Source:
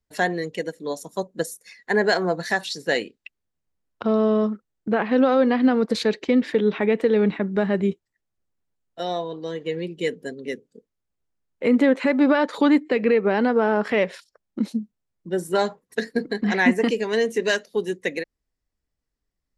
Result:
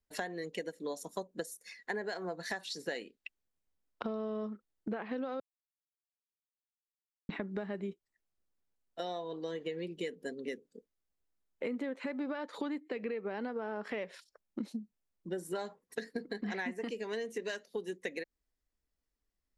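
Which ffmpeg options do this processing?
-filter_complex "[0:a]asplit=3[a][b][c];[a]atrim=end=5.4,asetpts=PTS-STARTPTS,afade=t=out:st=5.396:d=0.004:c=hsin[d];[b]atrim=start=5.4:end=7.29,asetpts=PTS-STARTPTS,volume=0[e];[c]atrim=start=7.29,asetpts=PTS-STARTPTS,afade=t=in:d=0.004:c=hsin[f];[d][e][f]concat=n=3:v=0:a=1,equalizer=f=120:w=2:g=-10,acompressor=threshold=-30dB:ratio=10,volume=-4.5dB"

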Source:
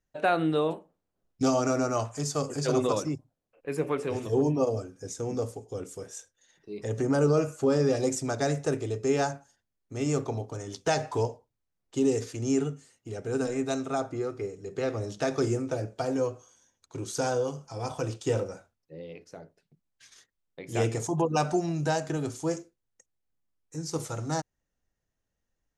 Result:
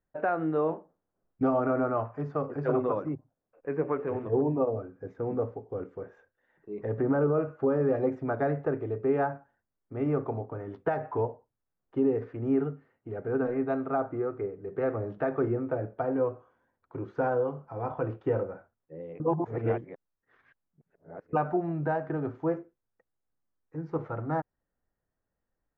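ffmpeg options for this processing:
-filter_complex "[0:a]asplit=3[a][b][c];[a]atrim=end=19.202[d];[b]atrim=start=19.198:end=21.332,asetpts=PTS-STARTPTS,areverse[e];[c]atrim=start=21.328[f];[d][e]acrossfade=d=0.004:c1=hsin:c2=hsin[g];[g][f]acrossfade=d=0.004:c1=hsin:c2=hsin,lowpass=f=1.7k:w=0.5412,lowpass=f=1.7k:w=1.3066,lowshelf=f=200:g=-5,alimiter=limit=-19dB:level=0:latency=1:release=481,volume=2dB"

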